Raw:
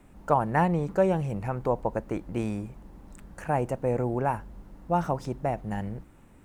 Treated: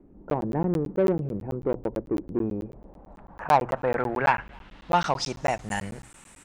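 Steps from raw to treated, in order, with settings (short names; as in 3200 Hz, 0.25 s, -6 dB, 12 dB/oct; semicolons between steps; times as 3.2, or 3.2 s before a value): low-pass sweep 360 Hz -> 8400 Hz, 2.39–5.77; in parallel at -6 dB: soft clip -21 dBFS, distortion -12 dB; on the sum: tilt shelf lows -9 dB; notches 60/120 Hz; speakerphone echo 0.27 s, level -29 dB; crackling interface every 0.11 s, samples 512, zero, from 0.3; gain +3 dB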